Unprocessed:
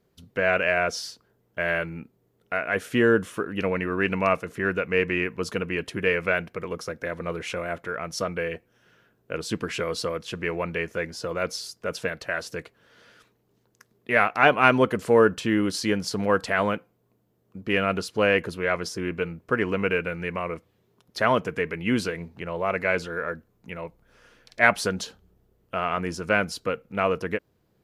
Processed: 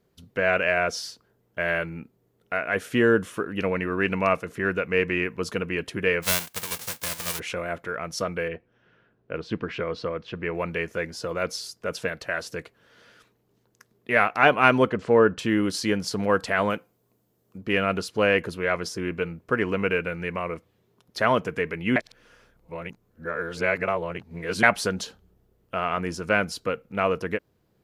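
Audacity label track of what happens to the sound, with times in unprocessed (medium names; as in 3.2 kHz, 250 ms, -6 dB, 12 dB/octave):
6.220000	7.380000	formants flattened exponent 0.1
8.480000	10.550000	distance through air 250 m
14.900000	15.390000	distance through air 130 m
16.700000	17.580000	tone controls bass -2 dB, treble +7 dB
21.960000	24.630000	reverse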